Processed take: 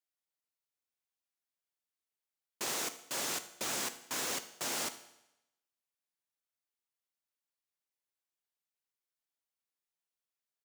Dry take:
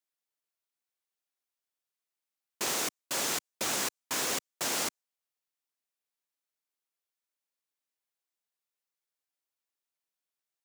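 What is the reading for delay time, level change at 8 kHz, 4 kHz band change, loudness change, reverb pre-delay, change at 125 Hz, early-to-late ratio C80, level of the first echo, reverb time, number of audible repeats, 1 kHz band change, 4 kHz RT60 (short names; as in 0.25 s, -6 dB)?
74 ms, -4.5 dB, -4.5 dB, -4.5 dB, 8 ms, -4.5 dB, 16.0 dB, -18.0 dB, 0.90 s, 1, -4.5 dB, 0.85 s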